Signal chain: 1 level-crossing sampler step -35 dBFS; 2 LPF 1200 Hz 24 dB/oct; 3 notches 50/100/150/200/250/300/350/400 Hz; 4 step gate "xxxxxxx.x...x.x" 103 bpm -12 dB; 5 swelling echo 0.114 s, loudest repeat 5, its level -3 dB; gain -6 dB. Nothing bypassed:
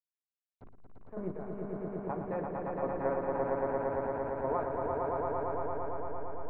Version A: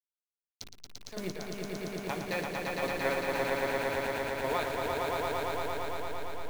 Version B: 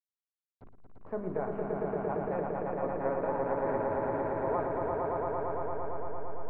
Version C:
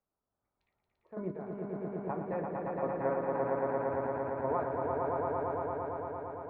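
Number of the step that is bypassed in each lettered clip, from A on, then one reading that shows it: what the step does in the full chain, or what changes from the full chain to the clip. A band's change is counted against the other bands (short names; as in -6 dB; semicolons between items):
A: 2, 2 kHz band +13.0 dB; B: 4, crest factor change -2.0 dB; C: 1, distortion -9 dB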